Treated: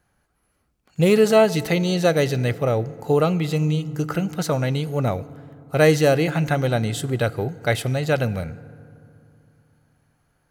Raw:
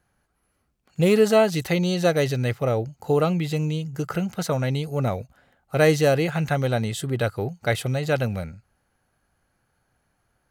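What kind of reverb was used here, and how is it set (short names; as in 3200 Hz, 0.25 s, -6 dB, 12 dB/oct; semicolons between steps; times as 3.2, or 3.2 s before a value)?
FDN reverb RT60 2.7 s, low-frequency decay 1.3×, high-frequency decay 0.5×, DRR 17 dB; gain +2 dB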